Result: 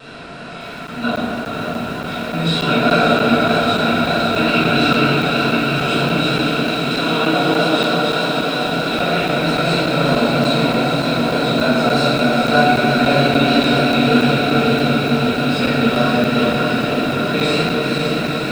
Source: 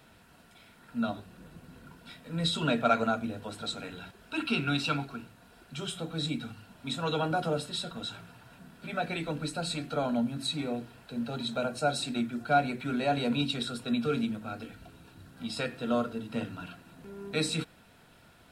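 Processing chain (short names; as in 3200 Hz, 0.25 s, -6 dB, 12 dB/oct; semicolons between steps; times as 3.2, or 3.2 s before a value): per-bin compression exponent 0.6; LPF 6600 Hz 12 dB/oct; tone controls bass -4 dB, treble -1 dB; diffused feedback echo 0.465 s, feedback 76%, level -4.5 dB; vibrato 3.2 Hz 44 cents; 6.33–8.65 HPF 180 Hz 24 dB/oct; reverb RT60 1.9 s, pre-delay 4 ms, DRR -10.5 dB; crackling interface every 0.29 s, samples 512, zero, from 0.87; lo-fi delay 0.568 s, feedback 80%, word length 6-bit, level -8.5 dB; gain -1 dB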